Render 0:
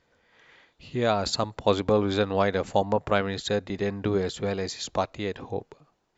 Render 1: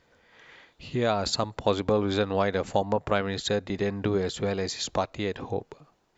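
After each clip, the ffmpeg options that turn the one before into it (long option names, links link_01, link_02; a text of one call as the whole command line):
ffmpeg -i in.wav -af "acompressor=threshold=-34dB:ratio=1.5,volume=4dB" out.wav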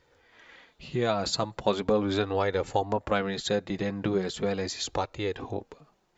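ffmpeg -i in.wav -af "flanger=delay=2.2:depth=4:regen=-28:speed=0.39:shape=sinusoidal,volume=2.5dB" out.wav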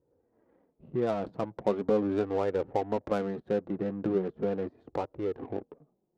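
ffmpeg -i in.wav -af "bandpass=frequency=340:width_type=q:width=0.66:csg=0,adynamicsmooth=sensitivity=6.5:basefreq=510" out.wav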